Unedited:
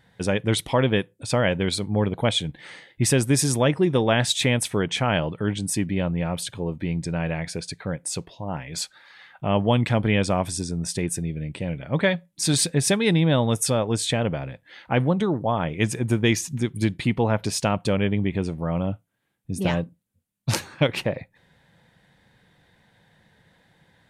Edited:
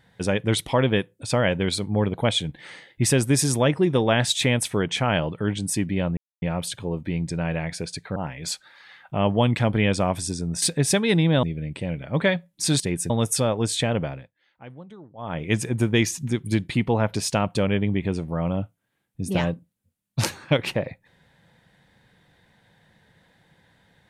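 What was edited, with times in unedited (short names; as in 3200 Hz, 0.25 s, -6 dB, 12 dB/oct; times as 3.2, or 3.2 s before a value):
6.17 insert silence 0.25 s
7.91–8.46 cut
10.92–11.22 swap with 12.59–13.4
14.36–15.74 dip -21 dB, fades 0.27 s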